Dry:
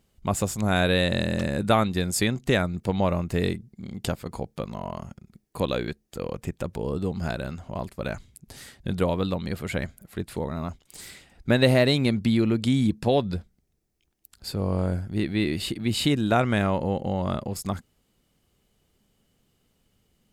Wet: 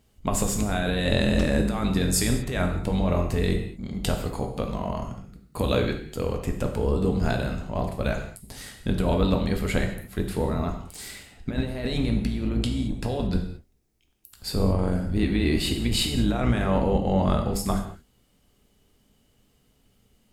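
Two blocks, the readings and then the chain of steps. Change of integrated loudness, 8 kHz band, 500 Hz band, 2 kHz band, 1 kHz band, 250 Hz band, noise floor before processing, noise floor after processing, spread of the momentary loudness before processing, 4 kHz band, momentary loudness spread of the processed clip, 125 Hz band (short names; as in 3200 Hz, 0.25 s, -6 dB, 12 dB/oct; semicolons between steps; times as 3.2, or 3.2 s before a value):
0.0 dB, +3.5 dB, -1.0 dB, -2.5 dB, -1.5 dB, +0.5 dB, -71 dBFS, -65 dBFS, 14 LU, -0.5 dB, 10 LU, +1.0 dB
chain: octaver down 2 oct, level -1 dB; negative-ratio compressor -23 dBFS, ratio -0.5; non-linear reverb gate 0.25 s falling, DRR 3 dB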